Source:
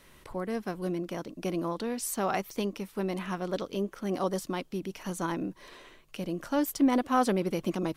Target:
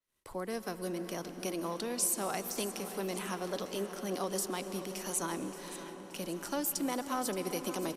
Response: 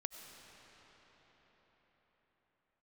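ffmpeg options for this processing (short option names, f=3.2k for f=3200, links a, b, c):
-filter_complex "[0:a]bass=f=250:g=-4,treble=f=4k:g=9,acrossover=split=170|350[a][b][c];[a]acompressor=threshold=-47dB:ratio=4[d];[b]acompressor=threshold=-41dB:ratio=4[e];[c]acompressor=threshold=-31dB:ratio=4[f];[d][e][f]amix=inputs=3:normalize=0,adynamicequalizer=threshold=0.00355:dfrequency=9600:dqfactor=0.89:tfrequency=9600:tqfactor=0.89:attack=5:release=100:ratio=0.375:range=2.5:mode=boostabove:tftype=bell,agate=range=-33dB:threshold=-50dB:ratio=16:detection=peak,aecho=1:1:574|1148|1722|2296|2870:0.2|0.0998|0.0499|0.0249|0.0125,asplit=2[g][h];[1:a]atrim=start_sample=2205,asetrate=27783,aresample=44100[i];[h][i]afir=irnorm=-1:irlink=0,volume=1.5dB[j];[g][j]amix=inputs=2:normalize=0,aresample=32000,aresample=44100,volume=-8.5dB"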